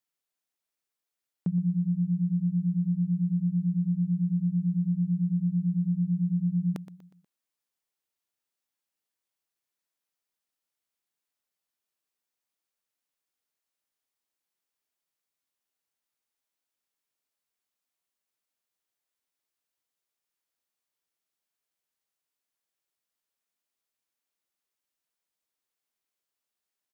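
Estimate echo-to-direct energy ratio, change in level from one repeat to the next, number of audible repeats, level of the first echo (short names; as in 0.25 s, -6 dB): -13.5 dB, -7.0 dB, 3, -14.5 dB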